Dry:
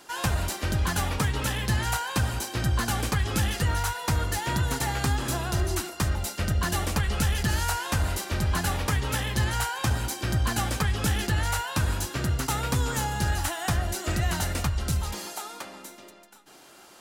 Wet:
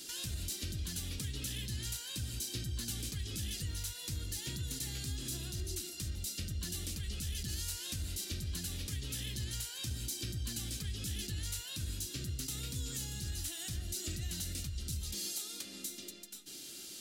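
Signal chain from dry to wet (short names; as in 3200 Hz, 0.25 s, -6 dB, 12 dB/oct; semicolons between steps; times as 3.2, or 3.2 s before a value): compressor 2.5:1, threshold -44 dBFS, peak gain reduction 15 dB; EQ curve 320 Hz 0 dB, 910 Hz -22 dB, 3800 Hz +7 dB; limiter -29 dBFS, peak gain reduction 8 dB; gain +1 dB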